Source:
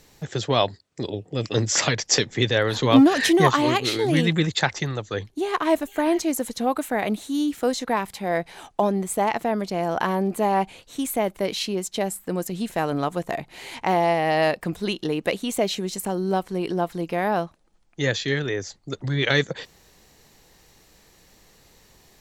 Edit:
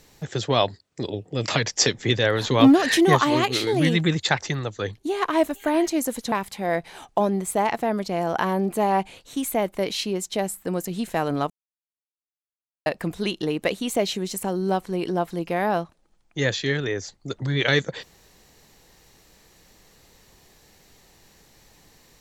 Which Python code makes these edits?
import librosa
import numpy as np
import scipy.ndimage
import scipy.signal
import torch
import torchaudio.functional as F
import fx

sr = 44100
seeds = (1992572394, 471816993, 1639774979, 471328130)

y = fx.edit(x, sr, fx.cut(start_s=1.48, length_s=0.32),
    fx.cut(start_s=6.64, length_s=1.3),
    fx.silence(start_s=13.12, length_s=1.36), tone=tone)